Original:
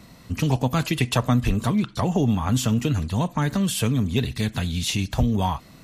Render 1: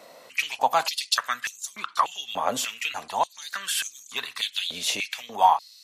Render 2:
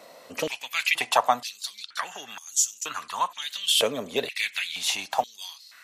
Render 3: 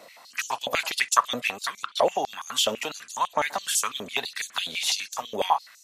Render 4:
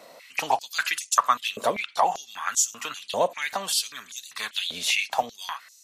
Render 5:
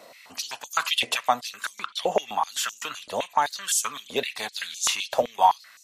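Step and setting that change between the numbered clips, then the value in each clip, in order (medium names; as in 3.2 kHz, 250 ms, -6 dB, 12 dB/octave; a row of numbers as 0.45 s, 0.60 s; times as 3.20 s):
step-sequenced high-pass, rate: 3.4 Hz, 2.1 Hz, 12 Hz, 5.1 Hz, 7.8 Hz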